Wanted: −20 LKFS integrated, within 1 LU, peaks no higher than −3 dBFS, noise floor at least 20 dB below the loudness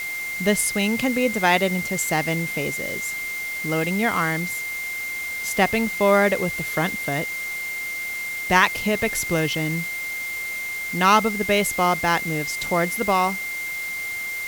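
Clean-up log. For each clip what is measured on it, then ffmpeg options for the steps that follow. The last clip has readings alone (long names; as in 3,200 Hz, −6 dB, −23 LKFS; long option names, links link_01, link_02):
interfering tone 2,100 Hz; level of the tone −27 dBFS; background noise floor −30 dBFS; target noise floor −43 dBFS; integrated loudness −22.5 LKFS; sample peak −2.0 dBFS; target loudness −20.0 LKFS
→ -af "bandreject=frequency=2100:width=30"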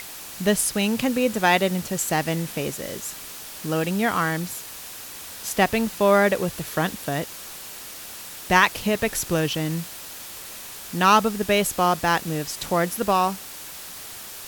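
interfering tone none found; background noise floor −38 dBFS; target noise floor −43 dBFS
→ -af "afftdn=noise_reduction=6:noise_floor=-38"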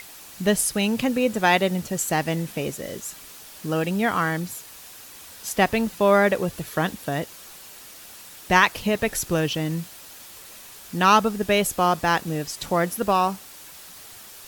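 background noise floor −44 dBFS; integrated loudness −23.0 LKFS; sample peak −2.5 dBFS; target loudness −20.0 LKFS
→ -af "volume=3dB,alimiter=limit=-3dB:level=0:latency=1"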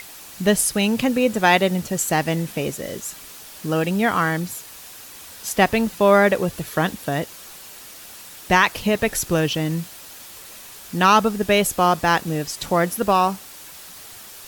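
integrated loudness −20.0 LKFS; sample peak −3.0 dBFS; background noise floor −41 dBFS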